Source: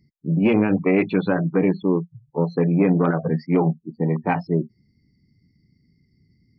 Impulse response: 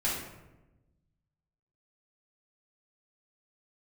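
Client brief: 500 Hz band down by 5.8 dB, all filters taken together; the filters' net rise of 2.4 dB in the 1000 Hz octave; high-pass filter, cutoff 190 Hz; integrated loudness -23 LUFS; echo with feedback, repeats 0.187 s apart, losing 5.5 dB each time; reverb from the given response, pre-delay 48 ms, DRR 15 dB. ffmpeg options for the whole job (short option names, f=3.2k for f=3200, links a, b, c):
-filter_complex "[0:a]highpass=190,equalizer=f=500:t=o:g=-8.5,equalizer=f=1k:t=o:g=6.5,aecho=1:1:187|374|561|748|935|1122|1309:0.531|0.281|0.149|0.079|0.0419|0.0222|0.0118,asplit=2[a][b];[1:a]atrim=start_sample=2205,adelay=48[c];[b][c]afir=irnorm=-1:irlink=0,volume=-23dB[d];[a][d]amix=inputs=2:normalize=0"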